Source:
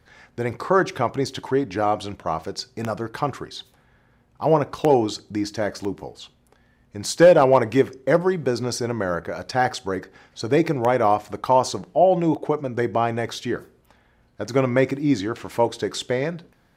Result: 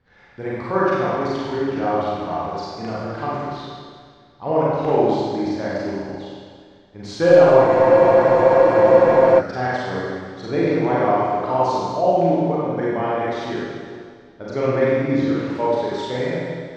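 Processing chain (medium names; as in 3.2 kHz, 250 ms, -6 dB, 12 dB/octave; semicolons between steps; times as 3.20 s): distance through air 170 m; Schroeder reverb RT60 1.9 s, combs from 32 ms, DRR -8 dB; spectral freeze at 7.68 s, 1.71 s; trim -6.5 dB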